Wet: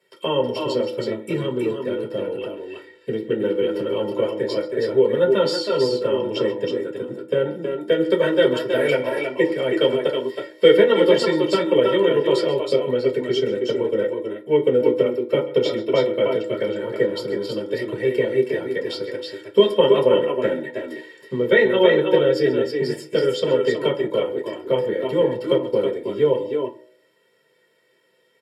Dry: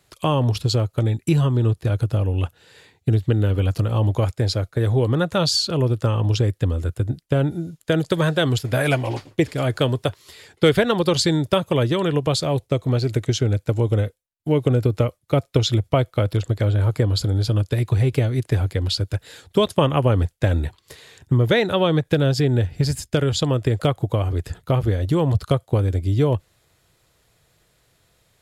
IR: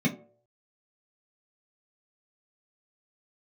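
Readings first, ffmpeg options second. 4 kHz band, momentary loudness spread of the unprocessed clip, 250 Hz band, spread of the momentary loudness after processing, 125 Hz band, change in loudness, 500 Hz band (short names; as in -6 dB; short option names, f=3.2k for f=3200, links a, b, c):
-1.5 dB, 5 LU, -1.0 dB, 11 LU, -16.5 dB, +0.5 dB, +6.0 dB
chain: -filter_complex "[0:a]highpass=f=320:w=0.5412,highpass=f=320:w=1.3066,aecho=1:1:2.2:0.59,aecho=1:1:132|320|323:0.141|0.501|0.398[a];[1:a]atrim=start_sample=2205,asetrate=37485,aresample=44100[b];[a][b]afir=irnorm=-1:irlink=0,volume=-11dB"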